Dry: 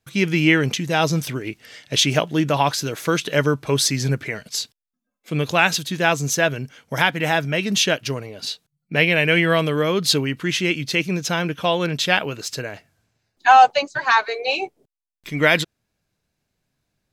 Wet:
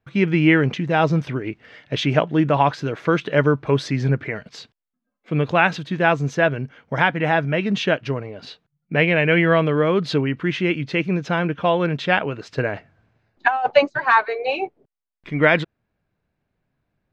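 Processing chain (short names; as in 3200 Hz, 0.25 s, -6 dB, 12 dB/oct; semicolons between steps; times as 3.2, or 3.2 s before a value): LPF 2000 Hz 12 dB/oct; 12.58–13.9 negative-ratio compressor -16 dBFS, ratio -0.5; gain +2 dB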